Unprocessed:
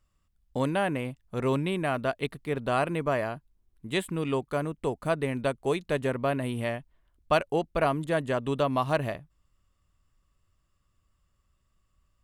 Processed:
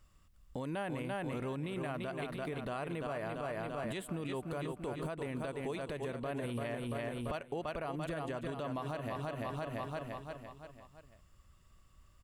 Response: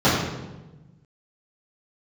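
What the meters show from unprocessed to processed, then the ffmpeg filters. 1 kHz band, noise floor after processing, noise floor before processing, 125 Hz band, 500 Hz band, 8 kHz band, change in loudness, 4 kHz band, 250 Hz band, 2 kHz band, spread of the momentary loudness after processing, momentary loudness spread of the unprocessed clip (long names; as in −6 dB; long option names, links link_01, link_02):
−10.0 dB, −64 dBFS, −73 dBFS, −8.0 dB, −10.0 dB, −8.0 dB, −10.5 dB, −10.0 dB, −8.0 dB, −10.0 dB, 5 LU, 7 LU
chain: -filter_complex "[0:a]asplit=2[link_01][link_02];[link_02]aecho=0:1:340|680|1020|1360|1700|2040:0.447|0.21|0.0987|0.0464|0.0218|0.0102[link_03];[link_01][link_03]amix=inputs=2:normalize=0,acompressor=threshold=-39dB:ratio=16,alimiter=level_in=12.5dB:limit=-24dB:level=0:latency=1:release=39,volume=-12.5dB,volume=7dB"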